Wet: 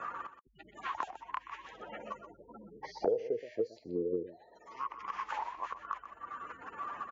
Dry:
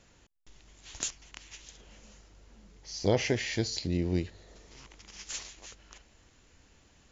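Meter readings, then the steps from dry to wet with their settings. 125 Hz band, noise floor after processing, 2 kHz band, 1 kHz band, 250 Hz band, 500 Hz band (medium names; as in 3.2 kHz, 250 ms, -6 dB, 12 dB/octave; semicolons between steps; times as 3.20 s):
-20.5 dB, -61 dBFS, -5.0 dB, +10.0 dB, -8.5 dB, -0.5 dB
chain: spectral gate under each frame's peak -20 dB strong; on a send: delay 125 ms -13.5 dB; on the sum: auto-wah 460–1200 Hz, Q 14, down, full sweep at -25 dBFS; three bands compressed up and down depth 100%; trim +15 dB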